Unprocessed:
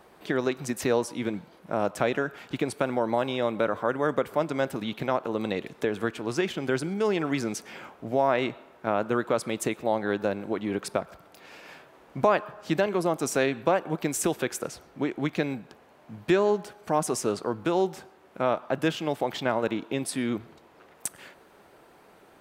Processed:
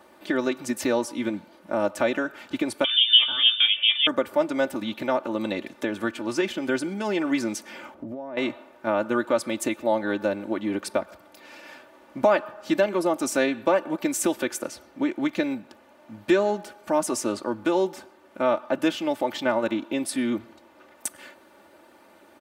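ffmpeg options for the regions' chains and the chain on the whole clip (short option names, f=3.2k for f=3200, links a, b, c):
-filter_complex "[0:a]asettb=1/sr,asplit=3[a][b][c];[a]atrim=end=2.844[d];[b]atrim=start=2.84:end=4.07,asetpts=PTS-STARTPTS,afade=t=in:d=0.004:c=qsin,afade=t=out:st=1.226:d=0.004:c=qsin,equalizer=f=780:w=5.2:g=14,asplit=2[e][f];[f]adelay=17,volume=-7dB[g];[e][g]amix=inputs=2:normalize=0,atrim=end_sample=54243,lowpass=f=3.2k:t=q:w=0.5098,lowpass=f=3.2k:t=q:w=0.6013,lowpass=f=3.2k:t=q:w=0.9,lowpass=f=3.2k:t=q:w=2.563,afreqshift=-3800[h];[c]atrim=start=4.066[i];[d][h]acrossfade=d=0.004:c1=hsin:c2=qsin[j];[j][i]acrossfade=d=0.004:c1=qsin:c2=hsin,asettb=1/sr,asplit=3[k][l][m];[k]atrim=end=7.944[n];[l]atrim=start=7.94:end=8.37,asetpts=PTS-STARTPTS,afade=t=in:d=0.004:c=qsin,afade=t=out:st=0.426:d=0.004:c=qsin,tiltshelf=f=850:g=8.5,acompressor=threshold=-32dB:ratio=20:attack=3.2:release=140:knee=1:detection=peak[o];[m]atrim=start=8.366[p];[n][o]acrossfade=d=0.004:c1=hsin:c2=qsin[q];[q][p]acrossfade=d=0.004:c1=qsin:c2=hsin,highpass=94,aecho=1:1:3.4:0.77"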